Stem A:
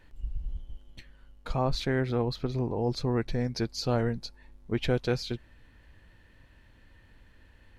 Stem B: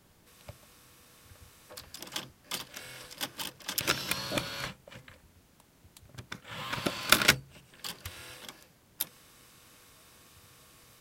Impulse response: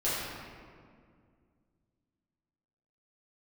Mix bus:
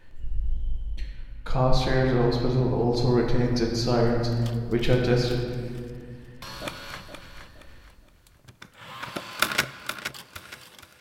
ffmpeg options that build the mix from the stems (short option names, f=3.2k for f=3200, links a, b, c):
-filter_complex "[0:a]volume=-1dB,asplit=4[a][b][c][d];[b]volume=-5.5dB[e];[c]volume=-22.5dB[f];[1:a]adynamicequalizer=threshold=0.00501:dfrequency=1100:dqfactor=0.71:tfrequency=1100:tqfactor=0.71:attack=5:release=100:ratio=0.375:range=2.5:mode=boostabove:tftype=bell,adelay=2300,volume=-4.5dB,asplit=3[g][h][i];[g]atrim=end=5.5,asetpts=PTS-STARTPTS,afade=t=out:st=5.496:d=0.004:c=hsin[j];[h]atrim=start=5.5:end=6.42,asetpts=PTS-STARTPTS,volume=0[k];[i]atrim=start=6.42,asetpts=PTS-STARTPTS,afade=t=in:d=0.004:c=hsin[l];[j][k][l]concat=n=3:v=0:a=1,asplit=3[m][n][o];[n]volume=-23.5dB[p];[o]volume=-8.5dB[q];[d]apad=whole_len=586924[r];[m][r]sidechaincompress=threshold=-41dB:ratio=8:attack=16:release=406[s];[2:a]atrim=start_sample=2205[t];[e][p]amix=inputs=2:normalize=0[u];[u][t]afir=irnorm=-1:irlink=0[v];[f][q]amix=inputs=2:normalize=0,aecho=0:1:469|938|1407|1876|2345:1|0.32|0.102|0.0328|0.0105[w];[a][s][v][w]amix=inputs=4:normalize=0"